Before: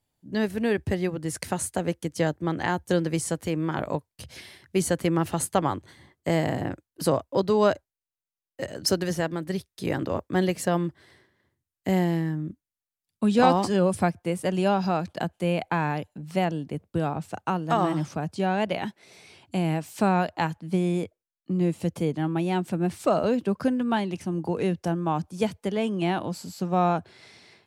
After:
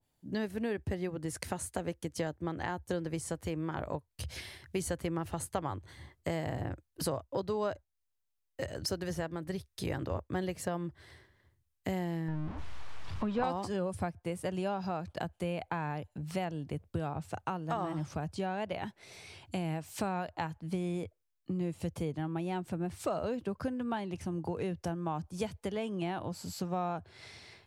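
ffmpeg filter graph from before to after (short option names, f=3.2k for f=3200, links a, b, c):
-filter_complex "[0:a]asettb=1/sr,asplit=3[a][b][c];[a]atrim=end=12.284[d];[b]atrim=start=12.28:end=13.44,asetpts=PTS-STARTPTS,afade=t=in:d=0.004:c=qsin,afade=t=out:st=1.156:d=0.004:c=qsin,aeval=exprs='val(0)+0.5*0.0251*sgn(val(0))':c=same,lowpass=2.9k,equalizer=f=970:t=o:w=0.69:g=6[e];[c]atrim=start=13.436[f];[d][e]acrossfade=d=0.004:c1=hsin:c2=qsin[g];[g][f]acrossfade=d=0.004:c1=qsin:c2=hsin,asubboost=boost=6.5:cutoff=77,acompressor=threshold=-35dB:ratio=2.5,adynamicequalizer=threshold=0.00355:dfrequency=1700:dqfactor=0.7:tfrequency=1700:tqfactor=0.7:attack=5:release=100:ratio=0.375:range=2.5:mode=cutabove:tftype=highshelf"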